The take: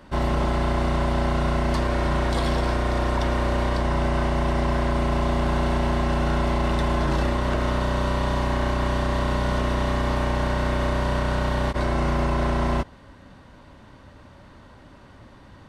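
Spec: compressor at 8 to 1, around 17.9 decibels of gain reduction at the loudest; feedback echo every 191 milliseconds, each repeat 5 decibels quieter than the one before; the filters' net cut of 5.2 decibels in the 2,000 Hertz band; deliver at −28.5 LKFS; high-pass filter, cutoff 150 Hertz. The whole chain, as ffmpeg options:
ffmpeg -i in.wav -af "highpass=150,equalizer=frequency=2000:width_type=o:gain=-7,acompressor=threshold=-42dB:ratio=8,aecho=1:1:191|382|573|764|955|1146|1337:0.562|0.315|0.176|0.0988|0.0553|0.031|0.0173,volume=15dB" out.wav

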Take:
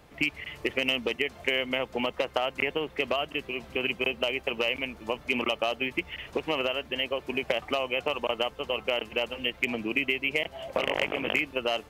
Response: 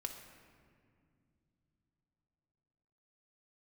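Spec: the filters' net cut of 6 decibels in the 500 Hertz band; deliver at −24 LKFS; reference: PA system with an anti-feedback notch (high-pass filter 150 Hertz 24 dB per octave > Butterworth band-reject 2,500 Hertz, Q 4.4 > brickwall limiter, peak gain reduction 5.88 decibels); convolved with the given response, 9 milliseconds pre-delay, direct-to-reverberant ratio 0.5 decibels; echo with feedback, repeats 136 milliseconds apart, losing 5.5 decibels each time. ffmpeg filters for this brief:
-filter_complex "[0:a]equalizer=frequency=500:width_type=o:gain=-7.5,aecho=1:1:136|272|408|544|680|816|952:0.531|0.281|0.149|0.079|0.0419|0.0222|0.0118,asplit=2[link_01][link_02];[1:a]atrim=start_sample=2205,adelay=9[link_03];[link_02][link_03]afir=irnorm=-1:irlink=0,volume=1dB[link_04];[link_01][link_04]amix=inputs=2:normalize=0,highpass=frequency=150:width=0.5412,highpass=frequency=150:width=1.3066,asuperstop=centerf=2500:order=8:qfactor=4.4,volume=6.5dB,alimiter=limit=-13.5dB:level=0:latency=1"

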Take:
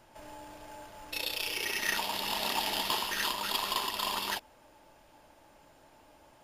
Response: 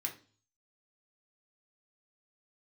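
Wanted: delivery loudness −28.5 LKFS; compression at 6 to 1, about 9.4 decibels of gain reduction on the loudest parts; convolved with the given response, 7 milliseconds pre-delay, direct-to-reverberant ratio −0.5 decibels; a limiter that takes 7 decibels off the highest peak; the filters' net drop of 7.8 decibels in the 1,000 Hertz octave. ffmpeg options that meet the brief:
-filter_complex "[0:a]equalizer=frequency=1000:width_type=o:gain=-9,acompressor=threshold=-39dB:ratio=6,alimiter=level_in=8.5dB:limit=-24dB:level=0:latency=1,volume=-8.5dB,asplit=2[link_01][link_02];[1:a]atrim=start_sample=2205,adelay=7[link_03];[link_02][link_03]afir=irnorm=-1:irlink=0,volume=0dB[link_04];[link_01][link_04]amix=inputs=2:normalize=0,volume=12dB"

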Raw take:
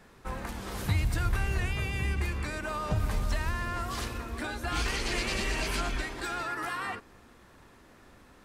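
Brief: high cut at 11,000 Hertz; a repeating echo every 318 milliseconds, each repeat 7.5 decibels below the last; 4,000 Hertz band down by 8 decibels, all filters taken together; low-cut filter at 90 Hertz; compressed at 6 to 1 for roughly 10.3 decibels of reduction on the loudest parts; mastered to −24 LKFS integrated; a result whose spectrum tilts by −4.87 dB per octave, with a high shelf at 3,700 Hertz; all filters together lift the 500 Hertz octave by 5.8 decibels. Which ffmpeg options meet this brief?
ffmpeg -i in.wav -af "highpass=90,lowpass=11000,equalizer=frequency=500:width_type=o:gain=8,highshelf=frequency=3700:gain=-6.5,equalizer=frequency=4000:width_type=o:gain=-6.5,acompressor=threshold=-36dB:ratio=6,aecho=1:1:318|636|954|1272|1590:0.422|0.177|0.0744|0.0312|0.0131,volume=15.5dB" out.wav

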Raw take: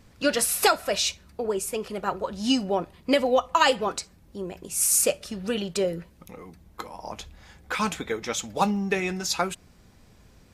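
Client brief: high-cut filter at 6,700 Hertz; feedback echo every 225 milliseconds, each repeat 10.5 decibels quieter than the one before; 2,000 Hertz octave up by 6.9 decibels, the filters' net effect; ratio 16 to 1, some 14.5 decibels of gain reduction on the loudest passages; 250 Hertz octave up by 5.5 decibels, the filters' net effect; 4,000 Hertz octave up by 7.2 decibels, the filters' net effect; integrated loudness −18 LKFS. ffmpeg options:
ffmpeg -i in.wav -af "lowpass=6700,equalizer=frequency=250:width_type=o:gain=6.5,equalizer=frequency=2000:width_type=o:gain=7,equalizer=frequency=4000:width_type=o:gain=7.5,acompressor=threshold=-25dB:ratio=16,aecho=1:1:225|450|675:0.299|0.0896|0.0269,volume=12dB" out.wav

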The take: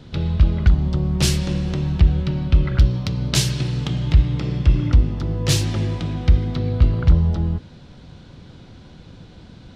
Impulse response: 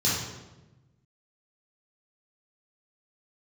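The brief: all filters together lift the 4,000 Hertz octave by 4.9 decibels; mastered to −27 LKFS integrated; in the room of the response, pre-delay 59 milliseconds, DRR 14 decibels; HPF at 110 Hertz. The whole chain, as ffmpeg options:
-filter_complex "[0:a]highpass=110,equalizer=frequency=4000:width_type=o:gain=6,asplit=2[link_01][link_02];[1:a]atrim=start_sample=2205,adelay=59[link_03];[link_02][link_03]afir=irnorm=-1:irlink=0,volume=-26dB[link_04];[link_01][link_04]amix=inputs=2:normalize=0,volume=-5.5dB"

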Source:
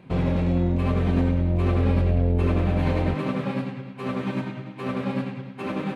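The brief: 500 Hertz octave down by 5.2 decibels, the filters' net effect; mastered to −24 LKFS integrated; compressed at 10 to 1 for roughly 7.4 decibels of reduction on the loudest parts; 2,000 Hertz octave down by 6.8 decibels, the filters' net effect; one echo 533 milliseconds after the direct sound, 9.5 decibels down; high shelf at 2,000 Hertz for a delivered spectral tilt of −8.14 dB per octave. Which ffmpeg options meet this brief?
ffmpeg -i in.wav -af "equalizer=frequency=500:width_type=o:gain=-6,highshelf=frequency=2000:gain=-8.5,equalizer=frequency=2000:width_type=o:gain=-3,acompressor=threshold=-25dB:ratio=10,aecho=1:1:533:0.335,volume=7.5dB" out.wav

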